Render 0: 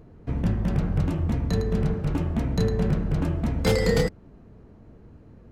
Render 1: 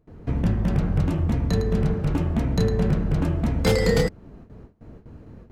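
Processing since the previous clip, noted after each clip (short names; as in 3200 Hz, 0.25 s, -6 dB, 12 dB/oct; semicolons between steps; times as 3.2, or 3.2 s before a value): gate with hold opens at -40 dBFS; in parallel at -1 dB: compressor, threshold -31 dBFS, peak gain reduction 13.5 dB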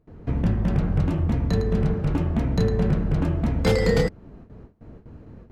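high shelf 6200 Hz -8 dB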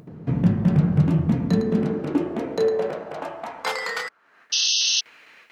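high-pass sweep 150 Hz -> 2300 Hz, 1.18–4.83; upward compressor, threshold -35 dBFS; painted sound noise, 4.52–5.01, 2600–6400 Hz -21 dBFS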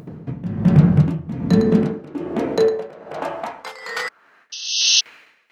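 tremolo 1.2 Hz, depth 87%; gain +7 dB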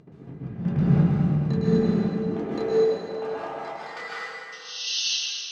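air absorption 79 m; resonator 400 Hz, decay 0.15 s, harmonics all, mix 70%; plate-style reverb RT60 2.2 s, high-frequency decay 0.9×, pre-delay 0.115 s, DRR -7.5 dB; gain -5 dB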